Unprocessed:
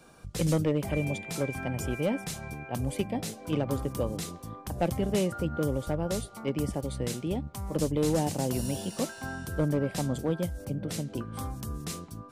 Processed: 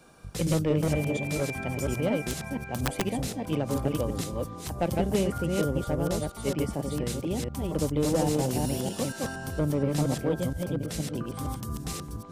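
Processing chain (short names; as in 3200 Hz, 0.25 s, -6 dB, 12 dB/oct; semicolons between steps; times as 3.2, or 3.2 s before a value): reverse delay 0.234 s, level -2 dB; 2.21–3.08 wrapped overs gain 18.5 dB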